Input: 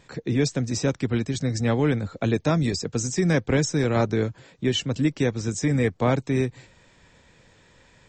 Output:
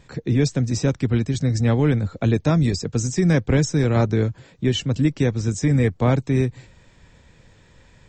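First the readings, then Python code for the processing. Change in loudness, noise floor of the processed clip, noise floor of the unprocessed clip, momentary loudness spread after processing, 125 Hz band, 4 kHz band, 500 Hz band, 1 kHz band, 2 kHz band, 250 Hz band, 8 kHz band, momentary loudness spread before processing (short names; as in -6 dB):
+3.5 dB, -53 dBFS, -57 dBFS, 4 LU, +6.0 dB, 0.0 dB, +1.0 dB, +0.5 dB, 0.0 dB, +3.0 dB, 0.0 dB, 5 LU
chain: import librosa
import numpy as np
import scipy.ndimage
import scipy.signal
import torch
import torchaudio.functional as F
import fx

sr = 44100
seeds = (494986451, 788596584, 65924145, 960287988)

y = fx.low_shelf(x, sr, hz=160.0, db=10.0)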